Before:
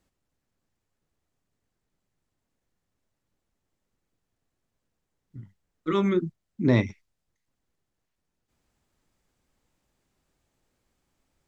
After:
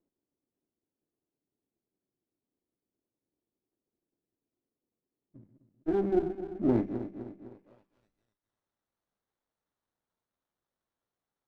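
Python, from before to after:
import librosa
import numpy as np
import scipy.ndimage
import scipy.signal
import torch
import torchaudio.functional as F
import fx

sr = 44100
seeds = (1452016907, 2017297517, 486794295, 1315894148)

y = fx.reverse_delay_fb(x, sr, ms=127, feedback_pct=69, wet_db=-10)
y = fx.filter_sweep_bandpass(y, sr, from_hz=340.0, to_hz=4400.0, start_s=7.46, end_s=8.4, q=2.3)
y = fx.running_max(y, sr, window=17)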